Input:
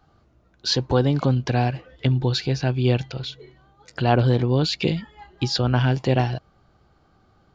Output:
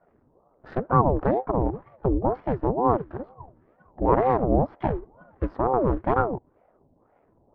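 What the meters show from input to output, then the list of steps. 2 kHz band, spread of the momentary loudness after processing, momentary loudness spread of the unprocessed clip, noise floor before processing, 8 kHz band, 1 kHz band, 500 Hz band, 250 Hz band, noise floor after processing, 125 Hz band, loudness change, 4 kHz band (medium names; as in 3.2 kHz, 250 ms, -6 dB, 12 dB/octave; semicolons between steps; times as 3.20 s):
-8.5 dB, 12 LU, 10 LU, -61 dBFS, no reading, +4.5 dB, +1.0 dB, -2.5 dB, -65 dBFS, -9.0 dB, -2.5 dB, under -30 dB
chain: median filter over 41 samples; LFO low-pass sine 1.7 Hz 510–1500 Hz; ring modulator with a swept carrier 410 Hz, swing 60%, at 2.1 Hz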